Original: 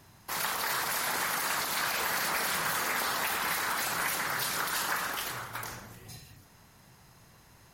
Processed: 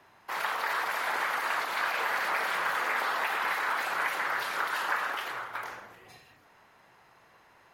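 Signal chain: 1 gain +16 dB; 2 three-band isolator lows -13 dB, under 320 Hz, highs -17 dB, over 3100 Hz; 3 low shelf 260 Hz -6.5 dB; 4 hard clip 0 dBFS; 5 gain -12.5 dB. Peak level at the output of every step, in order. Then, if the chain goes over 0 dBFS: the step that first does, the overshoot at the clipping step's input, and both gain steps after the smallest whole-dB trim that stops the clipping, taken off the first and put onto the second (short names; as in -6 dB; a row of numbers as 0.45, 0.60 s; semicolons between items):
-1.5, -3.0, -3.0, -3.0, -15.5 dBFS; no overload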